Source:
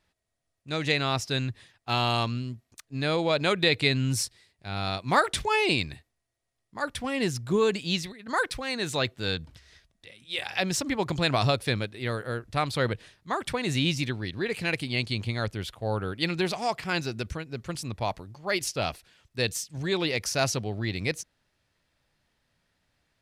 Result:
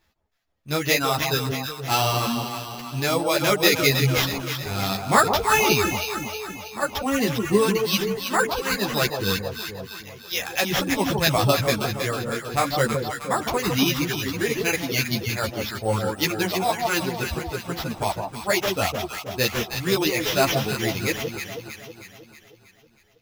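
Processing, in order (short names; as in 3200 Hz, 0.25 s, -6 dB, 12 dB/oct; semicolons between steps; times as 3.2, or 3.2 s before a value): reverb removal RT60 1.9 s; sample-and-hold 5×; echo with dull and thin repeats by turns 0.159 s, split 1000 Hz, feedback 73%, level -4 dB; ensemble effect; gain +8.5 dB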